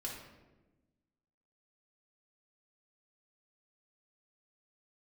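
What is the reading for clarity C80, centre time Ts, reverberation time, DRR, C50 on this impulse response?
5.5 dB, 49 ms, 1.1 s, -3.5 dB, 2.5 dB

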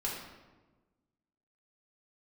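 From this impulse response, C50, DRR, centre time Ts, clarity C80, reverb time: 1.5 dB, -5.0 dB, 58 ms, 4.5 dB, 1.3 s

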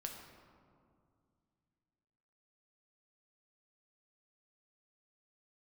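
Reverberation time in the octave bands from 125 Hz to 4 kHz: 3.2, 3.0, 2.3, 2.2, 1.5, 1.0 s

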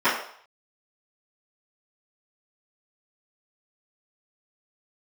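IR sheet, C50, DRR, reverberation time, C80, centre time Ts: 5.0 dB, -17.0 dB, 0.60 s, 8.5 dB, 39 ms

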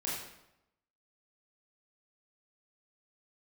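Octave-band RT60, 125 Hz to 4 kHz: 0.95, 0.90, 0.85, 0.85, 0.75, 0.65 s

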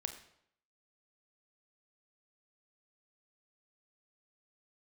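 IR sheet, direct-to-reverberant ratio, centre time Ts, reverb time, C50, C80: 6.0 dB, 15 ms, 0.70 s, 10.0 dB, 12.0 dB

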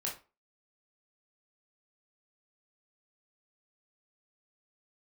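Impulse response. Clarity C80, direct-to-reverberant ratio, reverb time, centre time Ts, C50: 15.0 dB, -3.0 dB, 0.30 s, 26 ms, 8.0 dB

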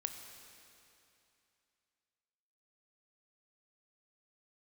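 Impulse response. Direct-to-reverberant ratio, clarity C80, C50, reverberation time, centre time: 5.5 dB, 7.0 dB, 6.5 dB, 2.7 s, 51 ms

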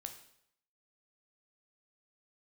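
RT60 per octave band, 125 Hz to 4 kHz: 0.75, 0.70, 0.75, 0.70, 0.70, 0.65 s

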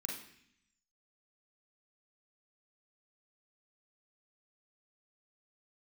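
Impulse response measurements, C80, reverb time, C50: 7.5 dB, 0.65 s, 3.5 dB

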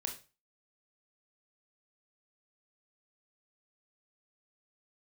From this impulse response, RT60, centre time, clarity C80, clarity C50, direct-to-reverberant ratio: 0.30 s, 17 ms, 16.0 dB, 10.0 dB, 2.5 dB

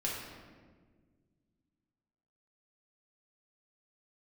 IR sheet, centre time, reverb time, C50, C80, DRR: 77 ms, 1.6 s, 1.0 dB, 3.0 dB, -4.5 dB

